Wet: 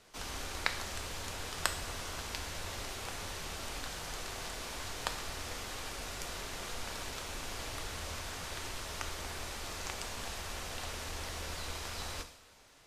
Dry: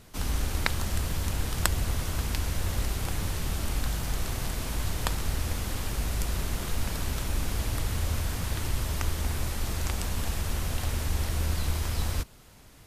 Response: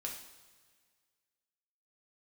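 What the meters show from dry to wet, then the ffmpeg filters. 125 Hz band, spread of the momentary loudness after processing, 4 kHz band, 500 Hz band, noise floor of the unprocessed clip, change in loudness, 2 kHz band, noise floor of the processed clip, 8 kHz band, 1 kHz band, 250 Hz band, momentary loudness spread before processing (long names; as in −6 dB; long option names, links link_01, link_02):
−17.5 dB, 5 LU, −3.0 dB, −5.5 dB, −51 dBFS, −8.5 dB, −3.5 dB, −58 dBFS, −5.5 dB, −3.5 dB, −12.5 dB, 3 LU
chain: -filter_complex "[0:a]acrossover=split=360 7700:gain=0.224 1 0.178[link_01][link_02][link_03];[link_01][link_02][link_03]amix=inputs=3:normalize=0,asplit=2[link_04][link_05];[1:a]atrim=start_sample=2205,highshelf=frequency=6500:gain=9[link_06];[link_05][link_06]afir=irnorm=-1:irlink=0,volume=0dB[link_07];[link_04][link_07]amix=inputs=2:normalize=0,volume=-8.5dB"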